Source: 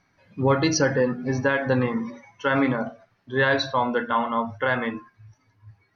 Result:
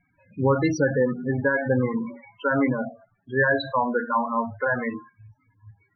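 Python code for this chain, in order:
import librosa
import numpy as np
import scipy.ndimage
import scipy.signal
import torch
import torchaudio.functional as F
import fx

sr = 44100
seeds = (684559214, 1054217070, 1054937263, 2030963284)

y = fx.spec_topn(x, sr, count=16)
y = fx.env_lowpass(y, sr, base_hz=2600.0, full_db=-17.5)
y = fx.high_shelf_res(y, sr, hz=3800.0, db=-6.5, q=3.0)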